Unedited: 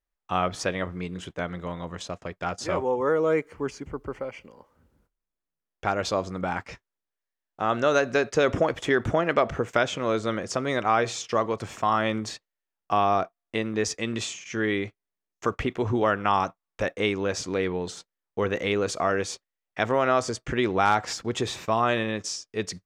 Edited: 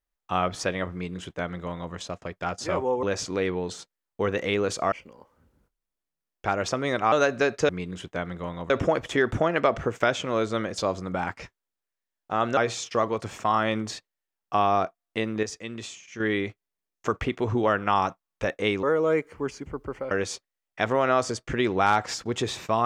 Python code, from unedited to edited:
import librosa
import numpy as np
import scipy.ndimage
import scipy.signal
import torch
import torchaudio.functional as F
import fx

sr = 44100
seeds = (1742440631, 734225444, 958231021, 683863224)

y = fx.edit(x, sr, fx.duplicate(start_s=0.92, length_s=1.01, to_s=8.43),
    fx.swap(start_s=3.03, length_s=1.28, other_s=17.21, other_length_s=1.89),
    fx.swap(start_s=6.07, length_s=1.79, other_s=10.51, other_length_s=0.44),
    fx.clip_gain(start_s=13.81, length_s=0.77, db=-7.0), tone=tone)